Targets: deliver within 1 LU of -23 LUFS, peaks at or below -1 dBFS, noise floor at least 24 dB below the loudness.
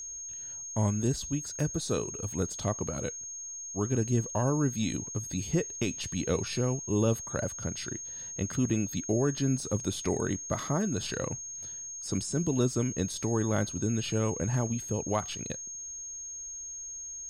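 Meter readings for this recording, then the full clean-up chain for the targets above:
steady tone 6.5 kHz; tone level -38 dBFS; loudness -31.5 LUFS; peak level -16.0 dBFS; loudness target -23.0 LUFS
-> band-stop 6.5 kHz, Q 30; trim +8.5 dB

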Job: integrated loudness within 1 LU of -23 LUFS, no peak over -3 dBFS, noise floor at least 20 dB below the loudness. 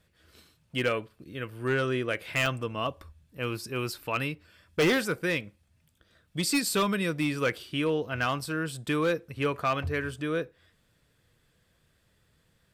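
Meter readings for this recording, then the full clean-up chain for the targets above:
clipped samples 0.8%; clipping level -19.5 dBFS; dropouts 1; longest dropout 2.0 ms; loudness -29.5 LUFS; peak level -19.5 dBFS; loudness target -23.0 LUFS
-> clip repair -19.5 dBFS; interpolate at 2.46 s, 2 ms; trim +6.5 dB

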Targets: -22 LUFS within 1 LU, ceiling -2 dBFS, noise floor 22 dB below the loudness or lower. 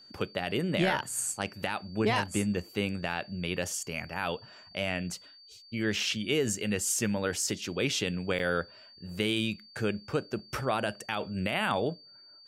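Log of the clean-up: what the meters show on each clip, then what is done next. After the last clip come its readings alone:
dropouts 1; longest dropout 4.6 ms; steady tone 4.6 kHz; tone level -52 dBFS; loudness -31.0 LUFS; peak level -14.0 dBFS; loudness target -22.0 LUFS
-> interpolate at 8.39 s, 4.6 ms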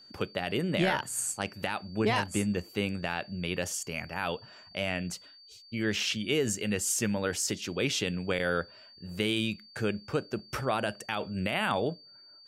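dropouts 0; steady tone 4.6 kHz; tone level -52 dBFS
-> band-stop 4.6 kHz, Q 30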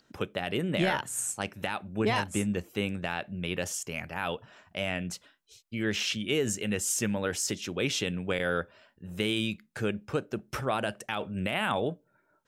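steady tone not found; loudness -31.0 LUFS; peak level -14.0 dBFS; loudness target -22.0 LUFS
-> trim +9 dB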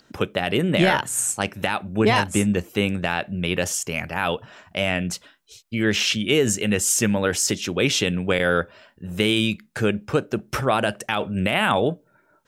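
loudness -22.0 LUFS; peak level -5.0 dBFS; noise floor -61 dBFS

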